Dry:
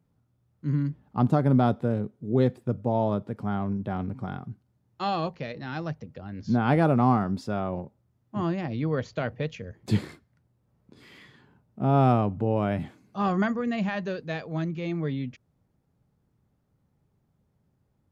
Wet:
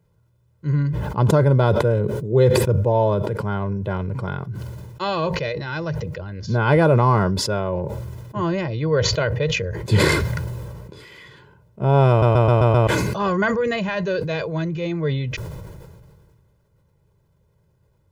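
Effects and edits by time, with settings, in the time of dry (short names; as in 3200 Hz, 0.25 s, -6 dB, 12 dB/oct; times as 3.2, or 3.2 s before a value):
12.09 stutter in place 0.13 s, 6 plays
whole clip: comb 2 ms, depth 80%; sustainer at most 28 dB/s; gain +5 dB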